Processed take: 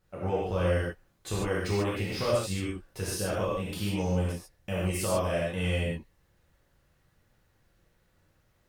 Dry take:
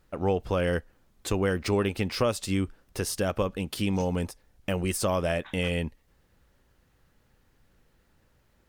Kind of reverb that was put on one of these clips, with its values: non-linear reverb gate 0.17 s flat, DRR -7 dB; gain -9.5 dB

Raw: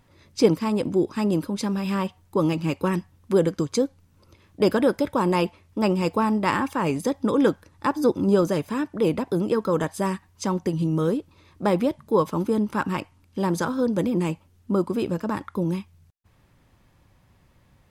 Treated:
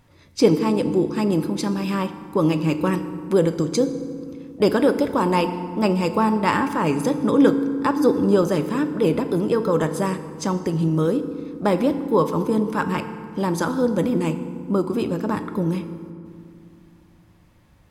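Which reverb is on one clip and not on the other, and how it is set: FDN reverb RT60 2.2 s, low-frequency decay 1.55×, high-frequency decay 0.55×, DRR 9 dB; gain +2 dB

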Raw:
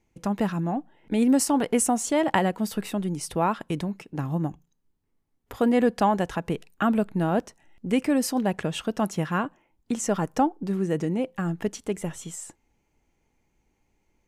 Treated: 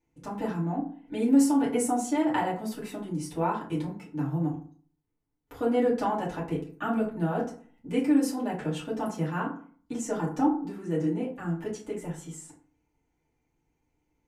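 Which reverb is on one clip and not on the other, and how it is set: FDN reverb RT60 0.47 s, low-frequency decay 1.2×, high-frequency decay 0.5×, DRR -7.5 dB; gain -13.5 dB

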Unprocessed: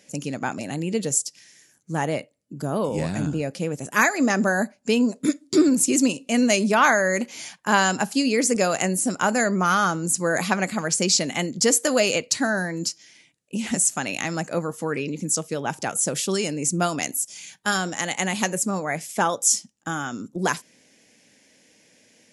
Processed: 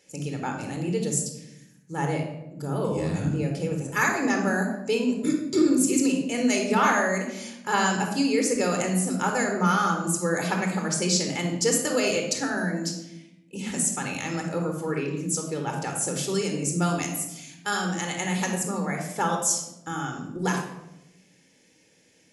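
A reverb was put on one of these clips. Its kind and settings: shoebox room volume 2900 m³, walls furnished, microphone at 4.2 m; gain -7 dB

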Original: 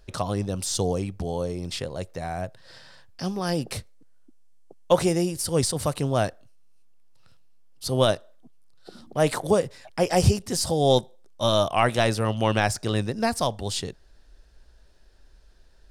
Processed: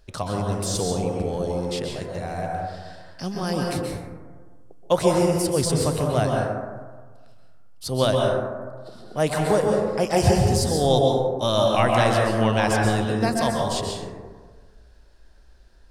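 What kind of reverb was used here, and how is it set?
plate-style reverb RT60 1.5 s, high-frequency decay 0.3×, pre-delay 0.115 s, DRR -1 dB; gain -1 dB

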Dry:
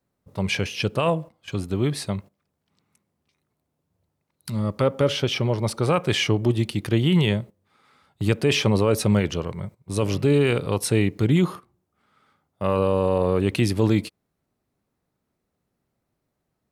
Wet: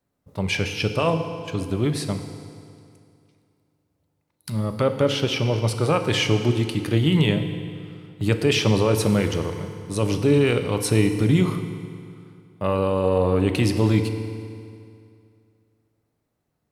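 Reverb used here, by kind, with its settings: FDN reverb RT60 2.4 s, low-frequency decay 1×, high-frequency decay 0.85×, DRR 6.5 dB

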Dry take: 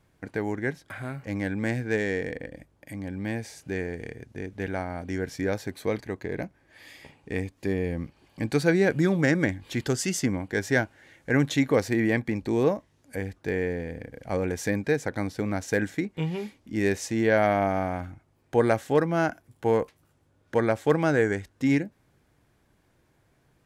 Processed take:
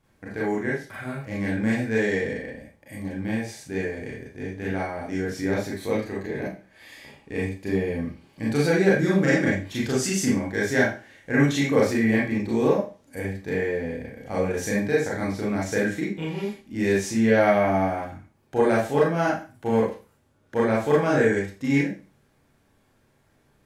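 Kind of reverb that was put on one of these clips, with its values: Schroeder reverb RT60 0.35 s, combs from 28 ms, DRR -6 dB; gain -4 dB

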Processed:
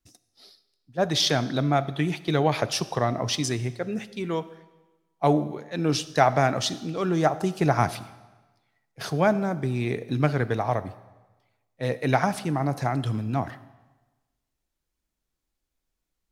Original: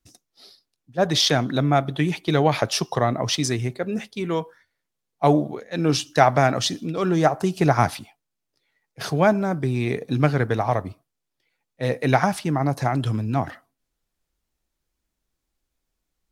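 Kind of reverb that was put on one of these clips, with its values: digital reverb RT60 1.2 s, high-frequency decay 0.95×, pre-delay 5 ms, DRR 15.5 dB; gain -3.5 dB

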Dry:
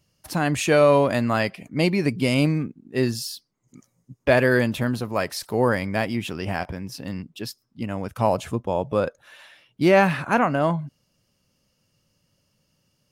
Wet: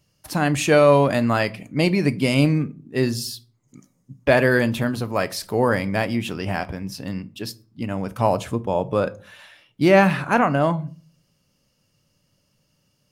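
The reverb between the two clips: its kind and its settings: shoebox room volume 270 m³, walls furnished, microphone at 0.37 m; gain +1.5 dB

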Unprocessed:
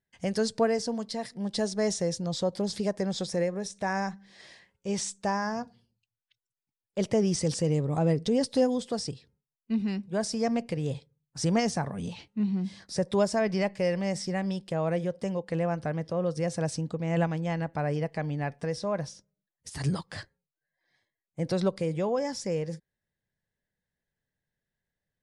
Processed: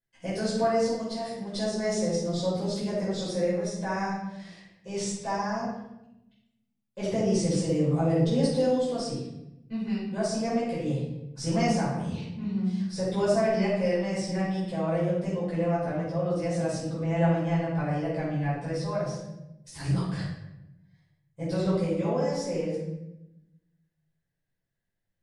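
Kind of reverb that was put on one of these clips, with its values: shoebox room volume 330 m³, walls mixed, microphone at 5.1 m; gain -12.5 dB

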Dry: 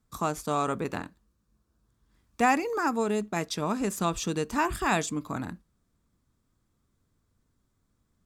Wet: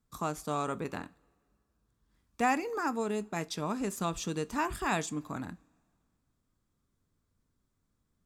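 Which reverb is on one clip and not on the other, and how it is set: two-slope reverb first 0.23 s, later 2 s, from -22 dB, DRR 15.5 dB; gain -5 dB

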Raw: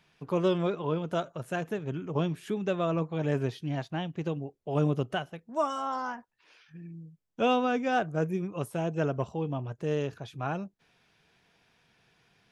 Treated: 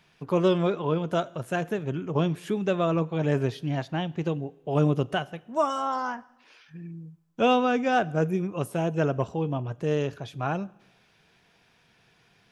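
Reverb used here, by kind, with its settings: two-slope reverb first 0.96 s, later 2.7 s, from -23 dB, DRR 20 dB; gain +4 dB

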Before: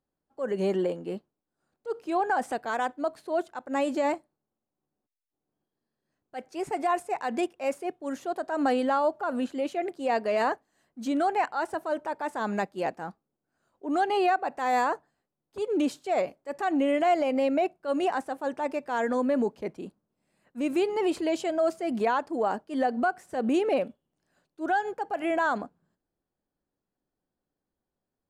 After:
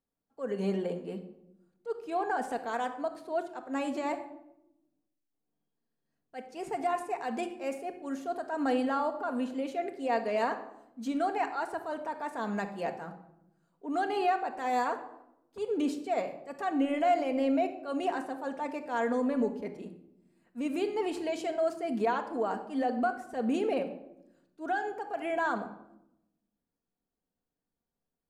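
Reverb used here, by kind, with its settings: shoebox room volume 2600 m³, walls furnished, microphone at 1.7 m; gain -5.5 dB

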